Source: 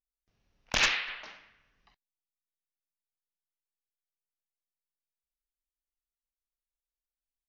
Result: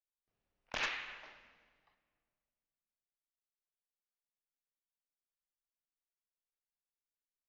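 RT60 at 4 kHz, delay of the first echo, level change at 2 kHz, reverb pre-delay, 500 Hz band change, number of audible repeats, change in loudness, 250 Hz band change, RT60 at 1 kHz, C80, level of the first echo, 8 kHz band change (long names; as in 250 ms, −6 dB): 1.6 s, no echo audible, −10.5 dB, 3 ms, −8.0 dB, no echo audible, −11.5 dB, −11.0 dB, 1.8 s, 14.5 dB, no echo audible, −17.0 dB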